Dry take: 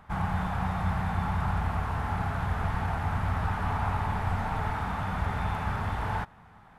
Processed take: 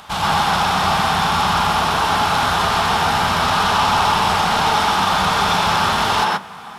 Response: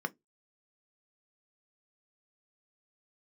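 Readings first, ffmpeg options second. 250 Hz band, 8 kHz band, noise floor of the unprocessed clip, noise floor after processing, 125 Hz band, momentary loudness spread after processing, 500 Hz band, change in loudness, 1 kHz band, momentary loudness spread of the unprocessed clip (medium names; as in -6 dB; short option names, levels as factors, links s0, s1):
+9.0 dB, no reading, -54 dBFS, -35 dBFS, +2.0 dB, 2 LU, +15.5 dB, +14.0 dB, +17.0 dB, 2 LU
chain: -filter_complex "[0:a]asplit=2[s0][s1];[s1]highpass=f=720:p=1,volume=11.2,asoftclip=type=tanh:threshold=0.158[s2];[s0][s2]amix=inputs=2:normalize=0,lowpass=f=1800:p=1,volume=0.501,aexciter=amount=7.6:drive=6.6:freq=2900,asplit=2[s3][s4];[1:a]atrim=start_sample=2205,adelay=126[s5];[s4][s5]afir=irnorm=-1:irlink=0,volume=1[s6];[s3][s6]amix=inputs=2:normalize=0,volume=1.33"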